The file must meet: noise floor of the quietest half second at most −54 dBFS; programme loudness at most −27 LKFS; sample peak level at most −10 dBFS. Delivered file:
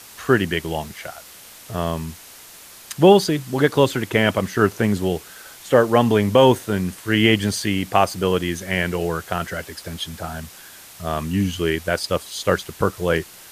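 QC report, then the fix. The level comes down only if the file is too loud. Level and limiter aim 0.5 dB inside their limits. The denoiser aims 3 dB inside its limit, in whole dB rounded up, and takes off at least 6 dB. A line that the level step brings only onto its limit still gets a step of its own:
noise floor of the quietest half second −43 dBFS: out of spec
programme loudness −20.0 LKFS: out of spec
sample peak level −1.5 dBFS: out of spec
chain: broadband denoise 7 dB, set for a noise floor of −43 dBFS
level −7.5 dB
brickwall limiter −10.5 dBFS

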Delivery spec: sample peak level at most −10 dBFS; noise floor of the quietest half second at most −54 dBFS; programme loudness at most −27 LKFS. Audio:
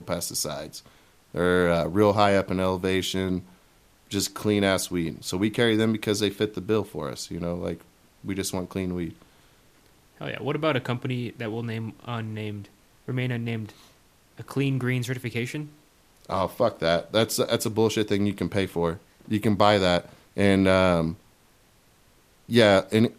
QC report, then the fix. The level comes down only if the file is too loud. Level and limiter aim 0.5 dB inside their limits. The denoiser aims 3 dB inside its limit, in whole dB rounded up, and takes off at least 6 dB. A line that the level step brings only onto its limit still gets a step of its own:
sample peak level −4.5 dBFS: out of spec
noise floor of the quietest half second −59 dBFS: in spec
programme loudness −25.5 LKFS: out of spec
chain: level −2 dB
brickwall limiter −10.5 dBFS

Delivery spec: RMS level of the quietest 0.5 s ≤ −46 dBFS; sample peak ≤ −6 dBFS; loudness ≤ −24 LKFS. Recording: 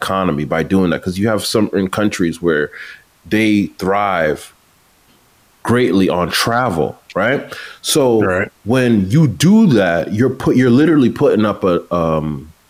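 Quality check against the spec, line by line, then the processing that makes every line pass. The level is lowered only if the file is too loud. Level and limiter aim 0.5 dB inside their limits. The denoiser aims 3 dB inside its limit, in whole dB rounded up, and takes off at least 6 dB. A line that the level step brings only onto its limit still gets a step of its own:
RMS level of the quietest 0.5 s −53 dBFS: in spec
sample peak −3.5 dBFS: out of spec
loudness −15.0 LKFS: out of spec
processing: level −9.5 dB

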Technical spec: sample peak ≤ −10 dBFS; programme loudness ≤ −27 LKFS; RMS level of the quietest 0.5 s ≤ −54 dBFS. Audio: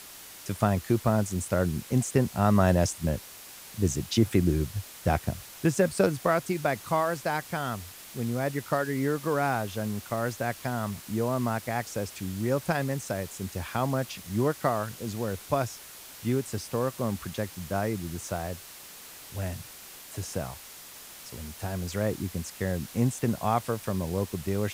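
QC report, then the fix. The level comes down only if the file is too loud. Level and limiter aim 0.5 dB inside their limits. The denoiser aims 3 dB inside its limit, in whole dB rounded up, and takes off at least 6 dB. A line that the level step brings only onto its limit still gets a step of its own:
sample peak −7.5 dBFS: out of spec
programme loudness −29.0 LKFS: in spec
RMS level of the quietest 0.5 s −46 dBFS: out of spec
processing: broadband denoise 11 dB, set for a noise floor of −46 dBFS
brickwall limiter −10.5 dBFS

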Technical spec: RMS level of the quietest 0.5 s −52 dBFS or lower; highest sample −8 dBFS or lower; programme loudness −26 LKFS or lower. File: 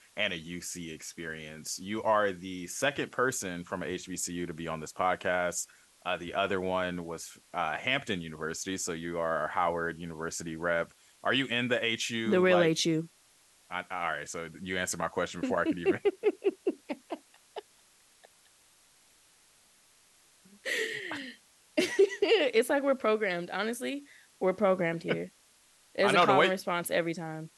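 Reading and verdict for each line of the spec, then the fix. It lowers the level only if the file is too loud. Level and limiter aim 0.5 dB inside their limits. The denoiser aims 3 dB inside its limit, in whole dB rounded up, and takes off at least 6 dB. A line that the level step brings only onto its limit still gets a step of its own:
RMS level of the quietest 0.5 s −63 dBFS: in spec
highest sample −10.0 dBFS: in spec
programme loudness −30.5 LKFS: in spec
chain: no processing needed

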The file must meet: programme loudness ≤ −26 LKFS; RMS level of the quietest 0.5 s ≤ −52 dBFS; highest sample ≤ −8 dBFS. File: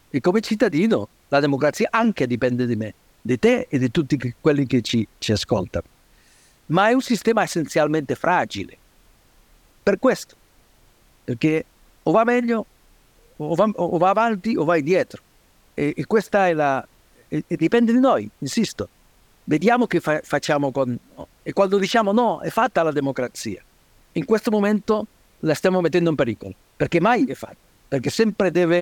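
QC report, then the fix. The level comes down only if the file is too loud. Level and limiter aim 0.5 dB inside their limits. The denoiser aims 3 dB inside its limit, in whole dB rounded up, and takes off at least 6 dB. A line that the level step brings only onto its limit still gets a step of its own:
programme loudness −21.0 LKFS: out of spec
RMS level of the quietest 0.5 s −56 dBFS: in spec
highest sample −5.0 dBFS: out of spec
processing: level −5.5 dB

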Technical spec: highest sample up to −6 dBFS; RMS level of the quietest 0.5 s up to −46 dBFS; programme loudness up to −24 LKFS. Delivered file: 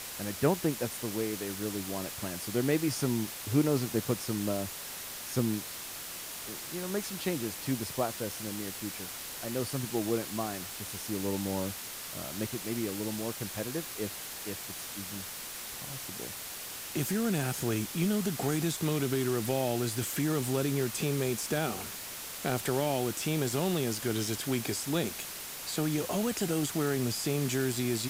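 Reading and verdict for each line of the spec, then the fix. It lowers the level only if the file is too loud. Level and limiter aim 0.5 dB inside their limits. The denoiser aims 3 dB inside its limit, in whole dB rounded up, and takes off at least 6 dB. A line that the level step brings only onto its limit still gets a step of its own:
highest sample −14.0 dBFS: in spec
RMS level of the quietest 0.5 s −42 dBFS: out of spec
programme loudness −32.5 LKFS: in spec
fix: broadband denoise 7 dB, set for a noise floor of −42 dBFS

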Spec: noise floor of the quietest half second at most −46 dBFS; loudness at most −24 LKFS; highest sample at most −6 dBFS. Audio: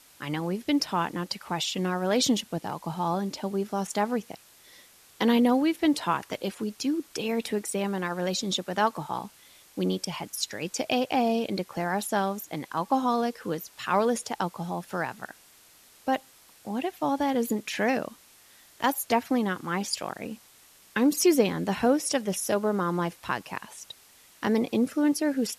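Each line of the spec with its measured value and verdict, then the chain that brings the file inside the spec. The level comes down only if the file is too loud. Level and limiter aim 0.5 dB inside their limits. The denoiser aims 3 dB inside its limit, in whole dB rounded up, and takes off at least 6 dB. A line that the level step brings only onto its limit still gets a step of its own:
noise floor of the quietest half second −56 dBFS: in spec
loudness −28.0 LKFS: in spec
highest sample −9.5 dBFS: in spec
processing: no processing needed

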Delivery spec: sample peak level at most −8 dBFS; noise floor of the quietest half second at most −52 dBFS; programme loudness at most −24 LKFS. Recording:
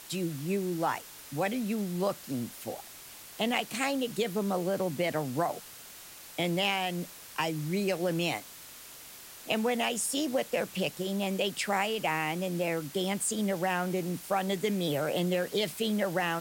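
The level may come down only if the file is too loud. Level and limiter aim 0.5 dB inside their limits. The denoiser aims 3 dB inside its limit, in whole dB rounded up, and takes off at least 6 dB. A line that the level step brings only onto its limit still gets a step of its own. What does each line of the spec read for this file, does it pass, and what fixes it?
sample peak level −14.0 dBFS: in spec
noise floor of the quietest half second −48 dBFS: out of spec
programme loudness −31.0 LKFS: in spec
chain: broadband denoise 7 dB, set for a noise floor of −48 dBFS

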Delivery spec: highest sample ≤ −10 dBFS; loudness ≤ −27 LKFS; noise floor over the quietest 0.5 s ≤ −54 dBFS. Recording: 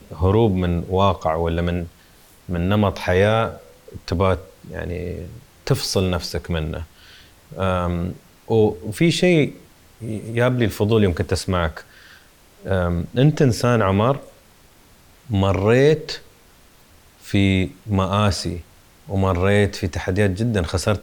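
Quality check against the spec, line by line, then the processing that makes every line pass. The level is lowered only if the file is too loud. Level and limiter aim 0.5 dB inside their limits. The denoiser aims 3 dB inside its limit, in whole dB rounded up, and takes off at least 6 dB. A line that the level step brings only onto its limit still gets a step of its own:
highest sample −4.5 dBFS: out of spec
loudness −20.5 LKFS: out of spec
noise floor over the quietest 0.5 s −51 dBFS: out of spec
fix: level −7 dB

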